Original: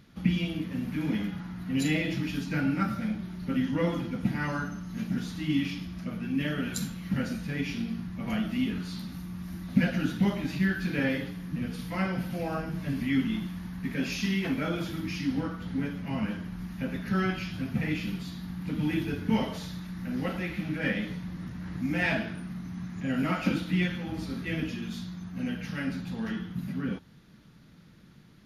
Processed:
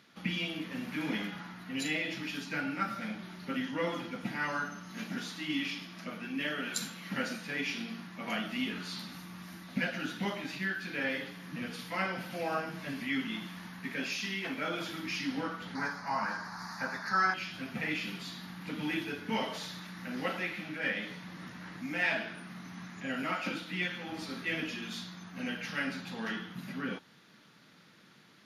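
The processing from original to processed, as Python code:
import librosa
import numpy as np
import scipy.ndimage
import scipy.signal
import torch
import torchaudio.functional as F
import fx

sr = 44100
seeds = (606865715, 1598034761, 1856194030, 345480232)

y = fx.highpass(x, sr, hz=150.0, slope=12, at=(4.92, 8.44))
y = fx.curve_eq(y, sr, hz=(130.0, 320.0, 530.0, 890.0, 1700.0, 3100.0, 4500.0, 12000.0), db=(0, -5, -2, 13, 7, -14, 13, -1), at=(15.75, 17.34))
y = fx.weighting(y, sr, curve='A')
y = fx.rider(y, sr, range_db=3, speed_s=0.5)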